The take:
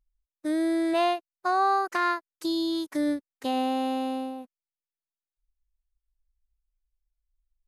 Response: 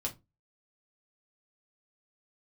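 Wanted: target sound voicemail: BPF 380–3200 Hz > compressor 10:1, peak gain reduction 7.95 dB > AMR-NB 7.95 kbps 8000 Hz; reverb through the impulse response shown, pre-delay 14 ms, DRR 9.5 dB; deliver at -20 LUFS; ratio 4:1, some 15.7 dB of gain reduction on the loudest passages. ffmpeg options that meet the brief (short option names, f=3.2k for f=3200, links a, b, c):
-filter_complex "[0:a]acompressor=threshold=-40dB:ratio=4,asplit=2[a][b];[1:a]atrim=start_sample=2205,adelay=14[c];[b][c]afir=irnorm=-1:irlink=0,volume=-11dB[d];[a][d]amix=inputs=2:normalize=0,highpass=380,lowpass=3.2k,acompressor=threshold=-41dB:ratio=10,volume=27.5dB" -ar 8000 -c:a libopencore_amrnb -b:a 7950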